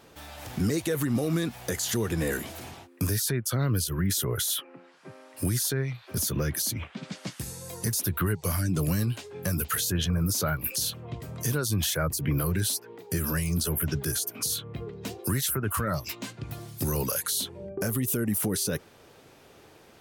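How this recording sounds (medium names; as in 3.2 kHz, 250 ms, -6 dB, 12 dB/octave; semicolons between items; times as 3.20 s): noise floor -55 dBFS; spectral tilt -3.5 dB/octave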